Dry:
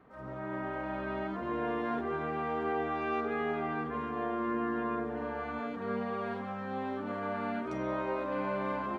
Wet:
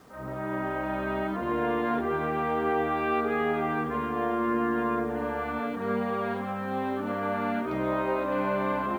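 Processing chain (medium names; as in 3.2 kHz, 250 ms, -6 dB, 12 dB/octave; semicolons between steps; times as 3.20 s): steep low-pass 4.5 kHz 36 dB/octave; bit crusher 11-bit; trim +6 dB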